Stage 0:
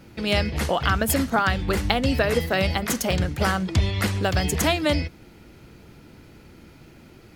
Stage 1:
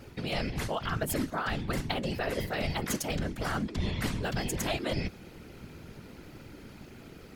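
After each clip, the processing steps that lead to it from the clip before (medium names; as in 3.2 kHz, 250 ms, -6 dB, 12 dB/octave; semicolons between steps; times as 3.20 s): reverse; compression 6:1, threshold -29 dBFS, peak gain reduction 13.5 dB; reverse; whisper effect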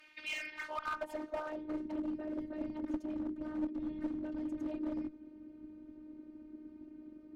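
band-pass sweep 2.4 kHz -> 240 Hz, 0.33–2.08 s; robot voice 307 Hz; one-sided clip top -37 dBFS; trim +4.5 dB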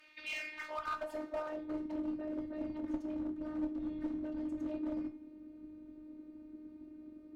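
reverberation, pre-delay 7 ms, DRR 5.5 dB; trim -2 dB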